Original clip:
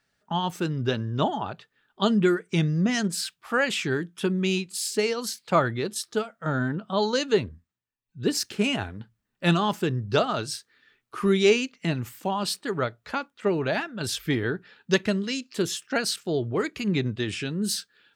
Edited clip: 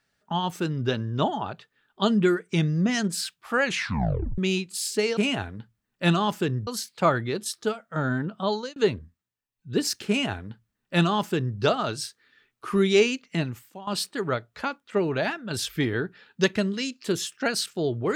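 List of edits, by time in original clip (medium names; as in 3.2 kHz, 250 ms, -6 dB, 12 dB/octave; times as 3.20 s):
3.63 s: tape stop 0.75 s
6.94–7.26 s: fade out
8.58–10.08 s: copy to 5.17 s
11.92–12.37 s: fade out quadratic, to -15 dB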